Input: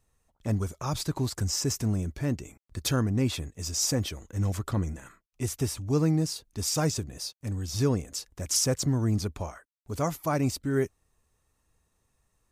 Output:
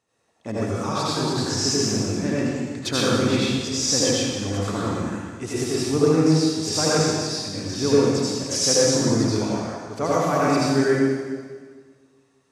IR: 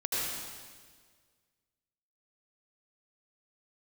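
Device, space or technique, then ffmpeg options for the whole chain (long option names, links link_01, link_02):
supermarket ceiling speaker: -filter_complex "[0:a]highpass=220,lowpass=6100[link_01];[1:a]atrim=start_sample=2205[link_02];[link_01][link_02]afir=irnorm=-1:irlink=0,volume=3.5dB"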